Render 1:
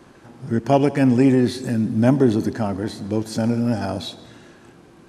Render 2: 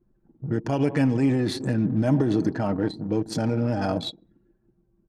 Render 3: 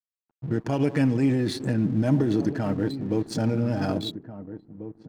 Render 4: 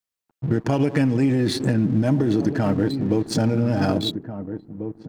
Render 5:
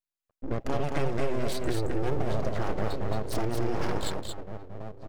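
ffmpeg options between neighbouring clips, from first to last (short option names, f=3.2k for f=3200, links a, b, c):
-af "anlmdn=25.1,alimiter=limit=-13.5dB:level=0:latency=1:release=68,aecho=1:1:6.4:0.43"
-filter_complex "[0:a]aeval=exprs='sgn(val(0))*max(abs(val(0))-0.00376,0)':c=same,adynamicequalizer=threshold=0.01:dfrequency=830:dqfactor=1.3:tfrequency=830:tqfactor=1.3:attack=5:release=100:ratio=0.375:range=2.5:mode=cutabove:tftype=bell,asplit=2[a][b];[b]adelay=1691,volume=-12dB,highshelf=f=4k:g=-38[c];[a][c]amix=inputs=2:normalize=0"
-af "acompressor=threshold=-23dB:ratio=6,volume=7.5dB"
-af "aeval=exprs='abs(val(0))':c=same,aecho=1:1:223:0.631,volume=-7.5dB"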